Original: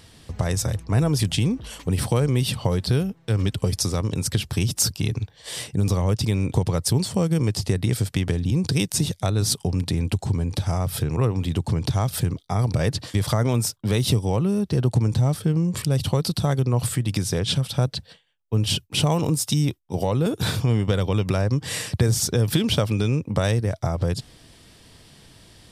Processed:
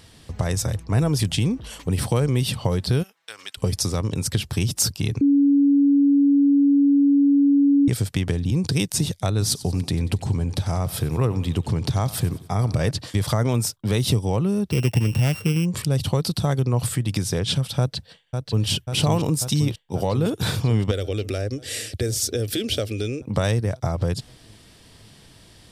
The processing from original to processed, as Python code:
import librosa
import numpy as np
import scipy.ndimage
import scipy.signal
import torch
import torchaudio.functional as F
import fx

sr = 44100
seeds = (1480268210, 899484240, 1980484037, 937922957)

y = fx.highpass(x, sr, hz=1300.0, slope=12, at=(3.02, 3.57), fade=0.02)
y = fx.echo_feedback(y, sr, ms=93, feedback_pct=53, wet_db=-17.5, at=(9.44, 12.91))
y = fx.sample_sort(y, sr, block=16, at=(14.7, 15.64), fade=0.02)
y = fx.echo_throw(y, sr, start_s=17.79, length_s=0.88, ms=540, feedback_pct=75, wet_db=-5.5)
y = fx.fixed_phaser(y, sr, hz=400.0, stages=4, at=(20.91, 23.22))
y = fx.edit(y, sr, fx.bleep(start_s=5.21, length_s=2.67, hz=282.0, db=-13.0), tone=tone)